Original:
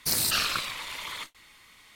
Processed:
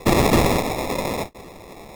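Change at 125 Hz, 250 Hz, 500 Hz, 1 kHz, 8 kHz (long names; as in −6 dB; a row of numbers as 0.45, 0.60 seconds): +21.0, +24.0, +24.5, +13.0, −1.0 decibels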